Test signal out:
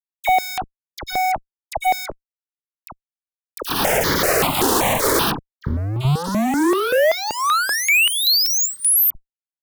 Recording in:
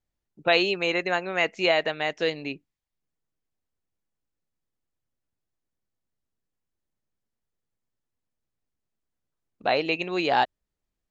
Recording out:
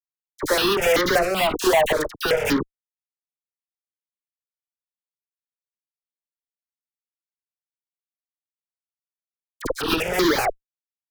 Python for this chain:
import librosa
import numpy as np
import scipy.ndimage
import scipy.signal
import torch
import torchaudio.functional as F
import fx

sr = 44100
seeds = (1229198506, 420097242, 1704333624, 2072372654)

y = fx.recorder_agc(x, sr, target_db=-11.0, rise_db_per_s=18.0, max_gain_db=30)
y = scipy.signal.sosfilt(scipy.signal.butter(2, 150.0, 'highpass', fs=sr, output='sos'), y)
y = fx.peak_eq(y, sr, hz=500.0, db=10.5, octaves=2.4)
y = fx.hum_notches(y, sr, base_hz=60, count=8)
y = fx.hpss(y, sr, part='percussive', gain_db=5)
y = fx.dynamic_eq(y, sr, hz=1400.0, q=5.0, threshold_db=-29.0, ratio=4.0, max_db=-3)
y = fx.level_steps(y, sr, step_db=17)
y = fx.gate_flip(y, sr, shuts_db=-5.0, range_db=-28)
y = fx.fuzz(y, sr, gain_db=40.0, gate_db=-34.0)
y = fx.dispersion(y, sr, late='lows', ms=51.0, hz=1400.0)
y = fx.phaser_held(y, sr, hz=5.2, low_hz=600.0, high_hz=2600.0)